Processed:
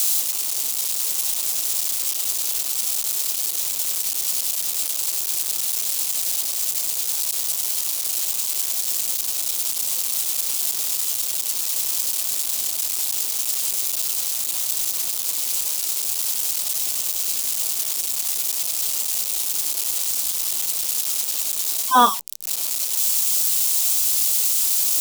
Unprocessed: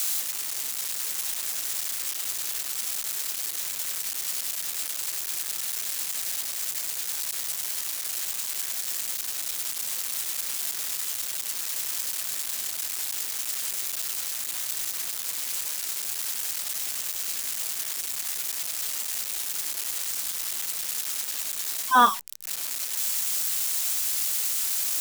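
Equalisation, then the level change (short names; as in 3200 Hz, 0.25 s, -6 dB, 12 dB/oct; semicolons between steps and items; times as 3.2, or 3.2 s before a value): low shelf 130 Hz -10.5 dB; bell 1700 Hz -11.5 dB 1 oct; +7.5 dB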